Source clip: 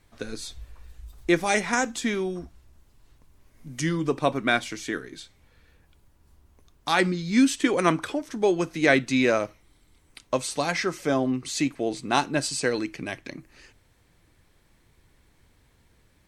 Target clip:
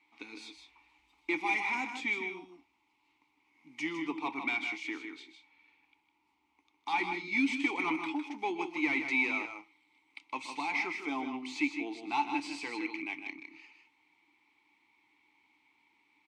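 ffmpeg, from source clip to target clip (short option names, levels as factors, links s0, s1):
-filter_complex "[0:a]tiltshelf=f=710:g=-9.5,asoftclip=type=hard:threshold=0.15,asplit=2[s0][s1];[s1]highpass=f=720:p=1,volume=2,asoftclip=type=tanh:threshold=0.211[s2];[s0][s2]amix=inputs=2:normalize=0,lowpass=f=4900:p=1,volume=0.501,asplit=3[s3][s4][s5];[s3]bandpass=f=300:t=q:w=8,volume=1[s6];[s4]bandpass=f=870:t=q:w=8,volume=0.501[s7];[s5]bandpass=f=2240:t=q:w=8,volume=0.355[s8];[s6][s7][s8]amix=inputs=3:normalize=0,asplit=2[s9][s10];[s10]aecho=0:1:125|156|184:0.15|0.422|0.112[s11];[s9][s11]amix=inputs=2:normalize=0,volume=1.78"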